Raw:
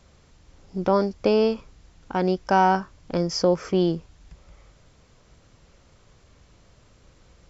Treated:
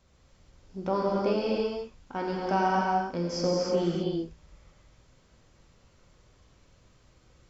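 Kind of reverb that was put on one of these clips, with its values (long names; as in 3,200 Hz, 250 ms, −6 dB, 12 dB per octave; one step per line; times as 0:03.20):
reverb whose tail is shaped and stops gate 360 ms flat, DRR −4 dB
level −10 dB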